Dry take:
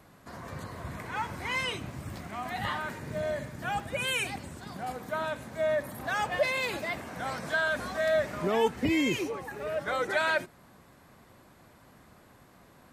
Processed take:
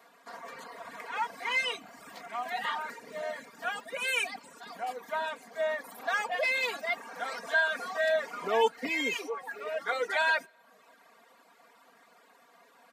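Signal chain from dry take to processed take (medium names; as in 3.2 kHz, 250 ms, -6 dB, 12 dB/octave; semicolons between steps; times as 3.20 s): high-pass 520 Hz 12 dB/octave; comb 4.3 ms, depth 84%; on a send at -22 dB: reverberation RT60 2.1 s, pre-delay 113 ms; on the sum: reverb removal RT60 0.74 s; peaking EQ 11 kHz -5.5 dB 1.2 oct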